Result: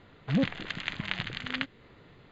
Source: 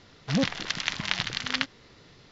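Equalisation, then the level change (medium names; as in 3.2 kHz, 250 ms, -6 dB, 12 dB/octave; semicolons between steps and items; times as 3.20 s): dynamic bell 940 Hz, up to -6 dB, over -45 dBFS, Q 1; boxcar filter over 8 samples; 0.0 dB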